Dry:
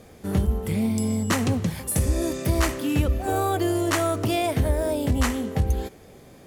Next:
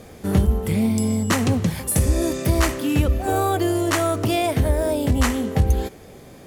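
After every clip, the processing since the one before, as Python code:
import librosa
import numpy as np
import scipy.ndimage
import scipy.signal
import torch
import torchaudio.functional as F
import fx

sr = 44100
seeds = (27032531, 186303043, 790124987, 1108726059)

y = fx.rider(x, sr, range_db=10, speed_s=0.5)
y = y * 10.0 ** (3.5 / 20.0)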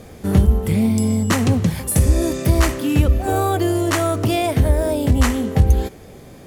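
y = fx.low_shelf(x, sr, hz=200.0, db=4.0)
y = y * 10.0 ** (1.0 / 20.0)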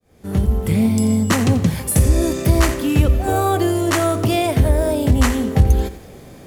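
y = fx.fade_in_head(x, sr, length_s=0.72)
y = fx.echo_crushed(y, sr, ms=87, feedback_pct=35, bits=7, wet_db=-14)
y = y * 10.0 ** (1.0 / 20.0)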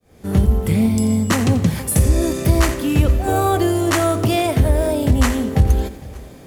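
y = fx.rider(x, sr, range_db=4, speed_s=0.5)
y = fx.echo_feedback(y, sr, ms=458, feedback_pct=45, wet_db=-21)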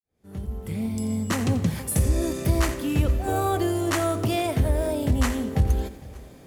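y = fx.fade_in_head(x, sr, length_s=1.52)
y = y * 10.0 ** (-7.0 / 20.0)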